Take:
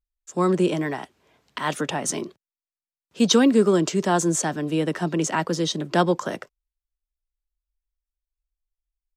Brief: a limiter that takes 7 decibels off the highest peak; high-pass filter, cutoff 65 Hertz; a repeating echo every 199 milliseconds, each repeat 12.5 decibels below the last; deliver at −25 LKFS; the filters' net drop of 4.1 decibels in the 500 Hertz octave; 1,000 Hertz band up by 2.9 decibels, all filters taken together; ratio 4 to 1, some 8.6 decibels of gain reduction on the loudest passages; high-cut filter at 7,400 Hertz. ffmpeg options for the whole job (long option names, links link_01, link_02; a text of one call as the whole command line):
ffmpeg -i in.wav -af "highpass=65,lowpass=7400,equalizer=frequency=500:width_type=o:gain=-7,equalizer=frequency=1000:width_type=o:gain=6,acompressor=threshold=-25dB:ratio=4,alimiter=limit=-20dB:level=0:latency=1,aecho=1:1:199|398|597:0.237|0.0569|0.0137,volume=5.5dB" out.wav